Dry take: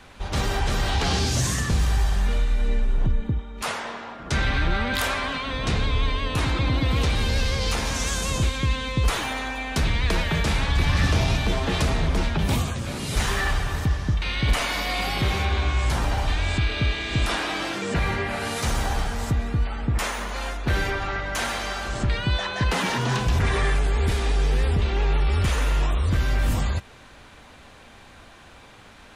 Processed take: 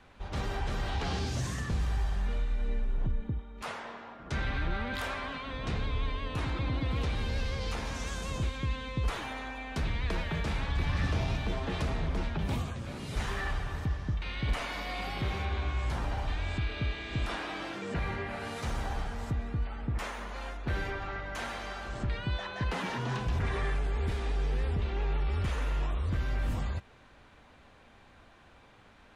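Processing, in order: high shelf 4500 Hz -10.5 dB; gain -9 dB

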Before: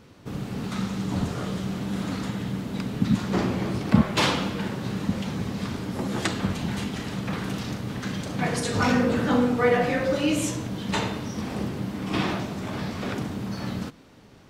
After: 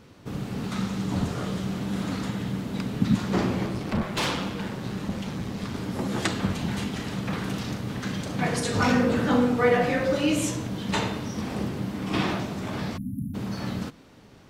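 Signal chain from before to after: 3.66–5.75 tube stage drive 21 dB, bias 0.5; 12.97–13.34 spectral delete 290–9600 Hz

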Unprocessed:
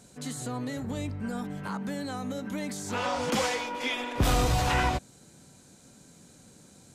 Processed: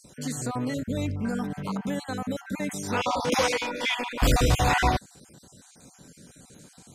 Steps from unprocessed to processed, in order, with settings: random spectral dropouts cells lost 36%; gain +5 dB

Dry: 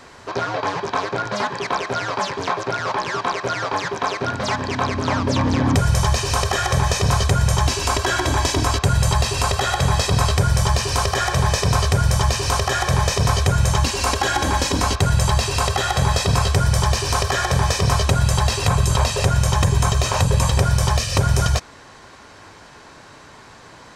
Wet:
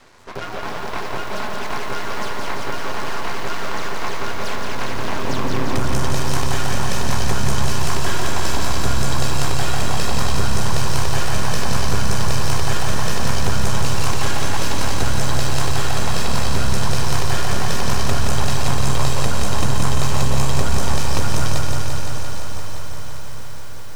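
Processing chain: half-wave rectifier; echo with dull and thin repeats by turns 0.201 s, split 1400 Hz, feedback 85%, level -9 dB; lo-fi delay 0.172 s, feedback 80%, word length 7-bit, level -4.5 dB; gain -2.5 dB

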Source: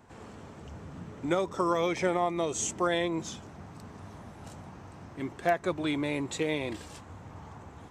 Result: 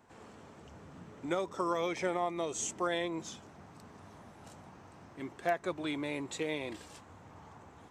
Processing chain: low shelf 150 Hz -8.5 dB; gain -4.5 dB

